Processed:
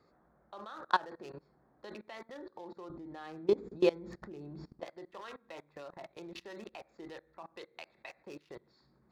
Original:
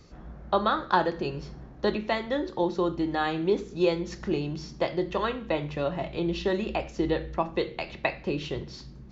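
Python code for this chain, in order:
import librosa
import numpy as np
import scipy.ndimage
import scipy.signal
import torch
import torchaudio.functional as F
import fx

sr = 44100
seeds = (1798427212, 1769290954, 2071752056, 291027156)

y = fx.wiener(x, sr, points=15)
y = fx.highpass(y, sr, hz=fx.steps((0.0, 820.0), (2.9, 180.0), (4.85, 1400.0)), slope=6)
y = fx.level_steps(y, sr, step_db=23)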